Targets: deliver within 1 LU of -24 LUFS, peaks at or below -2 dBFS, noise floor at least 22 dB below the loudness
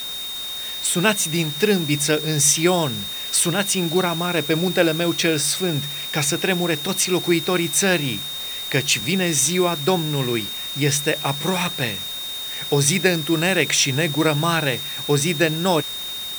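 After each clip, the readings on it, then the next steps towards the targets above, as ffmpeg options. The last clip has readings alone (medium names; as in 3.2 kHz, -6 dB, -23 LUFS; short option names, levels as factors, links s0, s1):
steady tone 3.7 kHz; tone level -28 dBFS; noise floor -30 dBFS; noise floor target -42 dBFS; loudness -20.0 LUFS; peak level -2.0 dBFS; loudness target -24.0 LUFS
-> -af "bandreject=f=3700:w=30"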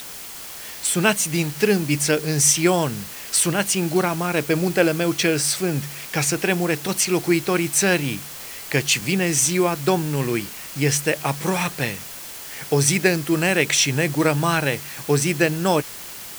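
steady tone not found; noise floor -36 dBFS; noise floor target -43 dBFS
-> -af "afftdn=nr=7:nf=-36"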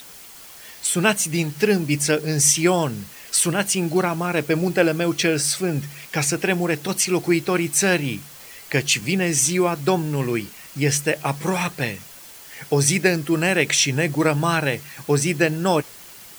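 noise floor -42 dBFS; noise floor target -43 dBFS
-> -af "afftdn=nr=6:nf=-42"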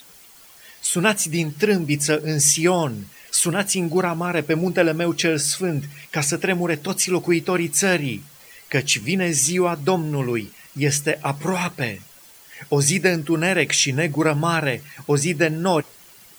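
noise floor -48 dBFS; loudness -20.5 LUFS; peak level -2.0 dBFS; loudness target -24.0 LUFS
-> -af "volume=0.668"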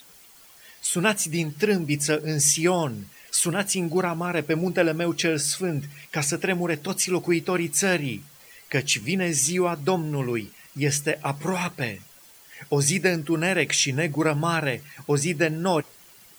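loudness -24.0 LUFS; peak level -5.5 dBFS; noise floor -51 dBFS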